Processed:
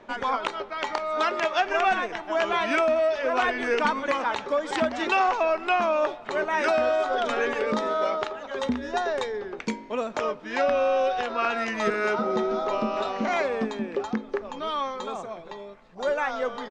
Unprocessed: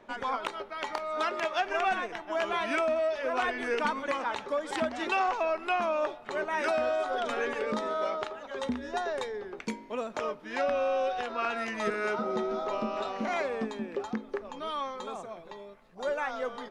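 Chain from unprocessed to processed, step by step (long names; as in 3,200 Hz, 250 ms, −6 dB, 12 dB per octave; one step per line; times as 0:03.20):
low-pass filter 7,800 Hz 24 dB per octave
far-end echo of a speakerphone 390 ms, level −27 dB
level +5.5 dB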